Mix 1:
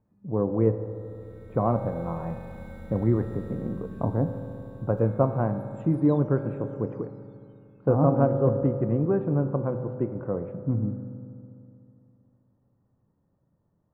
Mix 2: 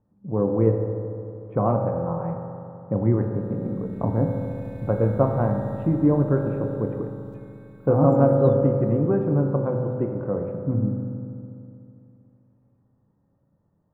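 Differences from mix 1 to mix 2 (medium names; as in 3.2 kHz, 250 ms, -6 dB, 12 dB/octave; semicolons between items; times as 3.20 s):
speech: send +7.5 dB; background: entry +2.35 s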